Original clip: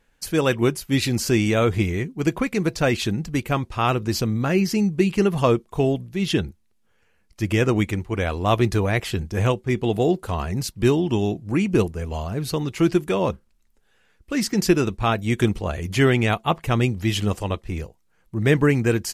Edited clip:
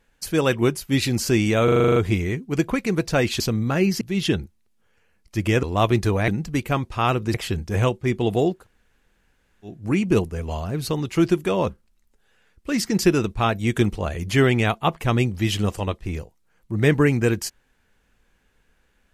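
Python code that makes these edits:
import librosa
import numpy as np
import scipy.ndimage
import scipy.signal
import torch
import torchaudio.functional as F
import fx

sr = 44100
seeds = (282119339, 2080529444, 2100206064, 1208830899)

y = fx.edit(x, sr, fx.stutter(start_s=1.64, slice_s=0.04, count=9),
    fx.move(start_s=3.08, length_s=1.06, to_s=8.97),
    fx.cut(start_s=4.75, length_s=1.31),
    fx.cut(start_s=7.68, length_s=0.64),
    fx.room_tone_fill(start_s=10.18, length_s=1.19, crossfade_s=0.24), tone=tone)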